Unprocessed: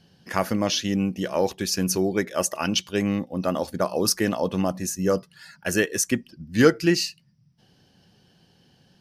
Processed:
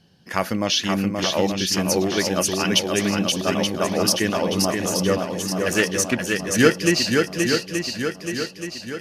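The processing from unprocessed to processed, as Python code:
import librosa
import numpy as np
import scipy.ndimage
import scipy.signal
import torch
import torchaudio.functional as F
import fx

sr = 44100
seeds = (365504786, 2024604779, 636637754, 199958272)

y = fx.dynamic_eq(x, sr, hz=3000.0, q=0.75, threshold_db=-38.0, ratio=4.0, max_db=6)
y = fx.echo_swing(y, sr, ms=877, ratio=1.5, feedback_pct=50, wet_db=-4)
y = fx.doppler_dist(y, sr, depth_ms=0.14, at=(5.69, 6.52))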